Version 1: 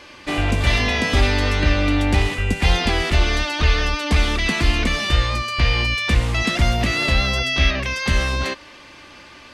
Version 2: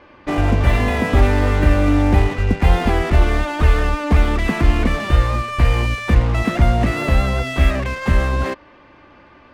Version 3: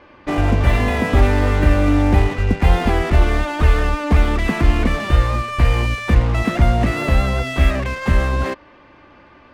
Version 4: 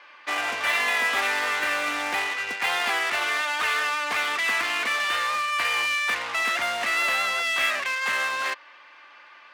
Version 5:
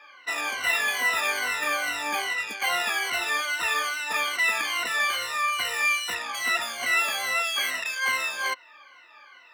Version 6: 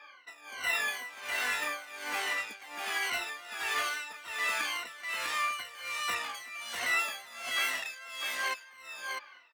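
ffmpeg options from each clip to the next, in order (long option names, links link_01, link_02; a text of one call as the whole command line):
ffmpeg -i in.wav -filter_complex "[0:a]lowpass=1300,aemphasis=mode=production:type=cd,asplit=2[link_01][link_02];[link_02]acrusher=bits=4:mix=0:aa=0.5,volume=-3.5dB[link_03];[link_01][link_03]amix=inputs=2:normalize=0" out.wav
ffmpeg -i in.wav -af anull out.wav
ffmpeg -i in.wav -af "highpass=1400,volume=4dB" out.wav
ffmpeg -i in.wav -af "afftfilt=real='re*pow(10,24/40*sin(2*PI*(2*log(max(b,1)*sr/1024/100)/log(2)-(-2.4)*(pts-256)/sr)))':imag='im*pow(10,24/40*sin(2*PI*(2*log(max(b,1)*sr/1024/100)/log(2)-(-2.4)*(pts-256)/sr)))':win_size=1024:overlap=0.75,highshelf=frequency=6600:gain=8.5,volume=-8dB" out.wav
ffmpeg -i in.wav -filter_complex "[0:a]asplit=2[link_01][link_02];[link_02]acompressor=threshold=-33dB:ratio=6,volume=-1dB[link_03];[link_01][link_03]amix=inputs=2:normalize=0,tremolo=f=1.3:d=0.92,aecho=1:1:649:0.596,volume=-7.5dB" out.wav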